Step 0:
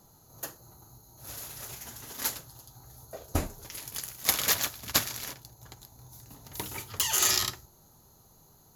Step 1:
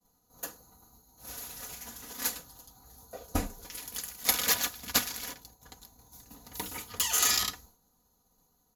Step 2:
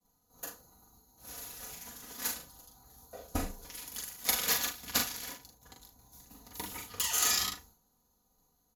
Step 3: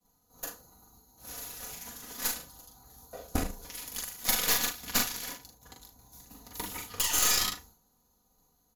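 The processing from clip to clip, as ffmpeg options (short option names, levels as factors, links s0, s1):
-af "aecho=1:1:4.1:0.72,agate=range=0.0224:threshold=0.00355:ratio=3:detection=peak,volume=0.75"
-af "aecho=1:1:41|76:0.596|0.158,volume=0.631"
-af "aeval=exprs='(tanh(20*val(0)+0.75)-tanh(0.75))/20':c=same,volume=2.37"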